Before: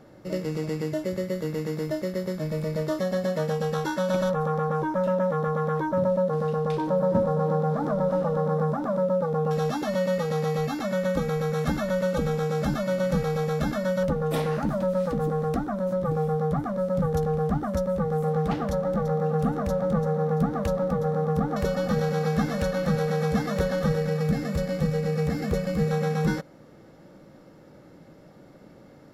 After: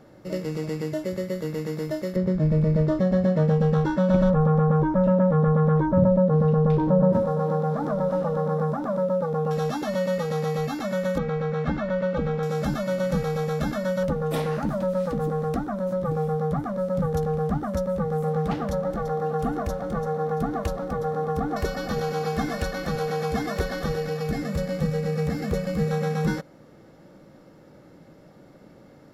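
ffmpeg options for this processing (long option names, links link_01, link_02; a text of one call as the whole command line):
ffmpeg -i in.wav -filter_complex "[0:a]asettb=1/sr,asplit=3[link_01][link_02][link_03];[link_01]atrim=end=2.164[link_04];[link_02]atrim=start=2.16:end=7.13,asetpts=PTS-STARTPTS,afade=type=in:duration=0.004:curve=qsin,afade=type=out:start_time=4.966:duration=0.004:curve=qsin,aemphasis=mode=reproduction:type=riaa[link_05];[link_03]atrim=start=7.126[link_06];[link_04][link_05]acrossfade=duration=0.004:curve1=hsin:curve2=qsin[link_07];[link_07][link_06]acrossfade=duration=0.004:curve1=qsin:curve2=hsin,asettb=1/sr,asplit=3[link_08][link_09][link_10];[link_08]atrim=end=11.184[link_11];[link_09]atrim=start=11.18:end=12.43,asetpts=PTS-STARTPTS,afade=type=in:duration=0.004:curve=qsin,afade=type=out:start_time=1.246:duration=0.004:curve=qsin,lowpass=2800[link_12];[link_10]atrim=start=12.426[link_13];[link_11][link_12]acrossfade=duration=0.004:curve1=hsin:curve2=qsin[link_14];[link_14][link_13]acrossfade=duration=0.004:curve1=qsin:curve2=hsin,asettb=1/sr,asplit=3[link_15][link_16][link_17];[link_15]atrim=end=18.904[link_18];[link_16]atrim=start=18.9:end=24.42,asetpts=PTS-STARTPTS,afade=type=in:duration=0.004:curve=qsin,afade=type=out:start_time=5.516:duration=0.004:curve=qsin,aecho=1:1:2.8:0.56,atrim=end_sample=243432[link_19];[link_17]atrim=start=24.416[link_20];[link_18][link_19]acrossfade=duration=0.004:curve1=hsin:curve2=qsin[link_21];[link_21][link_20]acrossfade=duration=0.004:curve1=qsin:curve2=hsin" out.wav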